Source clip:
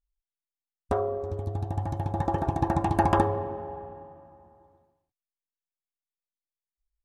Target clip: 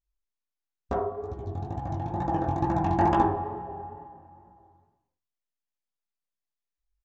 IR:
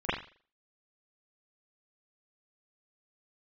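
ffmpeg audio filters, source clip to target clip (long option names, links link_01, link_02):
-filter_complex "[0:a]aresample=16000,aresample=44100,asplit=2[link_01][link_02];[1:a]atrim=start_sample=2205,lowpass=2200[link_03];[link_02][link_03]afir=irnorm=-1:irlink=0,volume=-13.5dB[link_04];[link_01][link_04]amix=inputs=2:normalize=0,flanger=delay=15.5:depth=7.6:speed=2.2"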